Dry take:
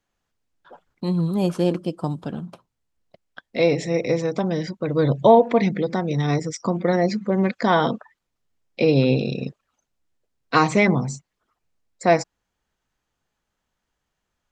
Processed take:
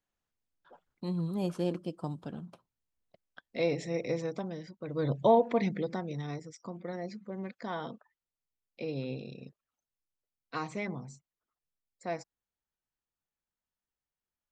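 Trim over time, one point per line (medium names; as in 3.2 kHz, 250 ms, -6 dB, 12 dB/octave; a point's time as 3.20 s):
4.28 s -11 dB
4.66 s -18.5 dB
5.13 s -10 dB
5.86 s -10 dB
6.44 s -19 dB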